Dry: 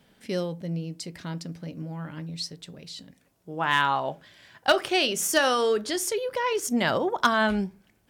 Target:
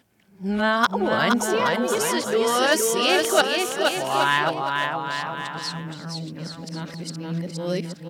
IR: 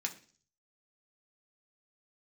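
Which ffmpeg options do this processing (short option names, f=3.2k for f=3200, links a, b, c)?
-af "areverse,highpass=84,aecho=1:1:470|822.5|1087|1285|1434:0.631|0.398|0.251|0.158|0.1,volume=2dB"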